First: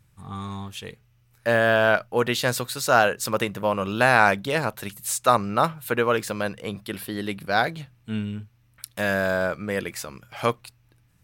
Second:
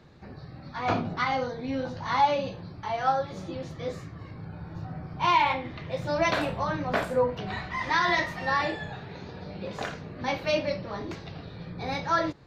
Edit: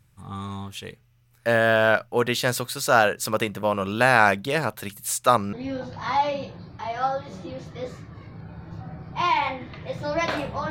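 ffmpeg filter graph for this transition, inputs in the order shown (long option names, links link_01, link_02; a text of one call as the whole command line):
ffmpeg -i cue0.wav -i cue1.wav -filter_complex "[0:a]apad=whole_dur=10.7,atrim=end=10.7,atrim=end=5.532[link_01];[1:a]atrim=start=1.568:end=6.74[link_02];[link_01][link_02]acrossfade=duration=0.004:curve1=hsin:curve2=hsin" out.wav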